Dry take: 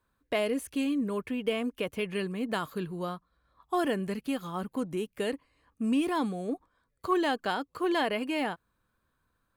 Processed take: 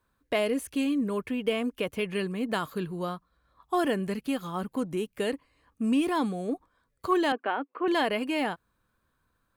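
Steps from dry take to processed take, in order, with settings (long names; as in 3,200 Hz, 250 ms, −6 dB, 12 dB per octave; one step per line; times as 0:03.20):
0:07.32–0:07.88: elliptic band-pass filter 260–2,600 Hz
level +2 dB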